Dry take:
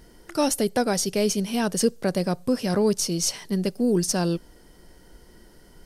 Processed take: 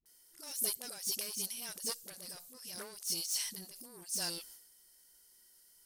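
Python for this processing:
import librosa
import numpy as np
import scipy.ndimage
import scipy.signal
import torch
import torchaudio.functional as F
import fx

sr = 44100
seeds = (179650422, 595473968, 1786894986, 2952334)

y = fx.high_shelf(x, sr, hz=5900.0, db=6.0)
y = 10.0 ** (-19.5 / 20.0) * np.tanh(y / 10.0 ** (-19.5 / 20.0))
y = scipy.signal.lfilter([1.0, -0.97], [1.0], y)
y = fx.transient(y, sr, attack_db=-12, sustain_db=10)
y = fx.dispersion(y, sr, late='highs', ms=58.0, hz=390.0)
y = F.gain(torch.from_numpy(y), -6.0).numpy()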